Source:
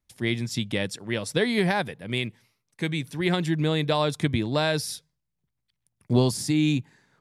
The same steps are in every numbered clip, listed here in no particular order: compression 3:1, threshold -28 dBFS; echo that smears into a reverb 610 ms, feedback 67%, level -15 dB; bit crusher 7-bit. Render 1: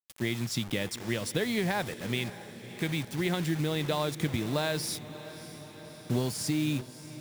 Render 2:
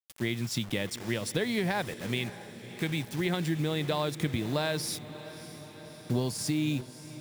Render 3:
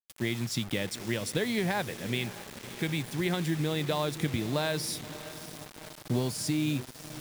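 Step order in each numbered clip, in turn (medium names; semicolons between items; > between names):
compression > bit crusher > echo that smears into a reverb; bit crusher > compression > echo that smears into a reverb; compression > echo that smears into a reverb > bit crusher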